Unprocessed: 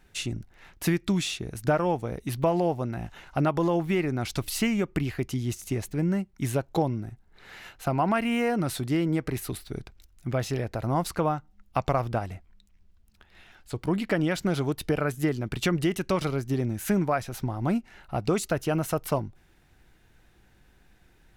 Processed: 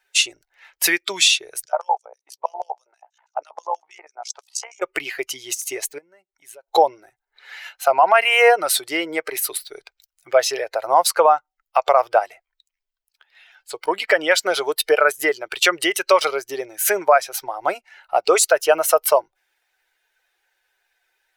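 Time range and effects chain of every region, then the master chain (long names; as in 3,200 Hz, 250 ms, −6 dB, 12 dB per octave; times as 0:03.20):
0:01.65–0:04.82: auto-filter band-pass square 6.2 Hz 830–6,300 Hz + amplitude modulation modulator 61 Hz, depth 70%
0:05.98–0:06.68: downward compressor 5 to 1, threshold −42 dBFS + one half of a high-frequency compander decoder only
whole clip: spectral dynamics exaggerated over time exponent 1.5; inverse Chebyshev high-pass filter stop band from 250 Hz, stop band 40 dB; boost into a limiter +22 dB; level −2.5 dB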